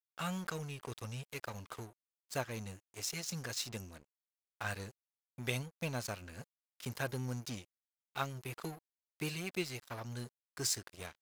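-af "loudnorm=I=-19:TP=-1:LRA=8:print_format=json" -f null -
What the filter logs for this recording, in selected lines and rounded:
"input_i" : "-41.0",
"input_tp" : "-17.9",
"input_lra" : "2.1",
"input_thresh" : "-51.4",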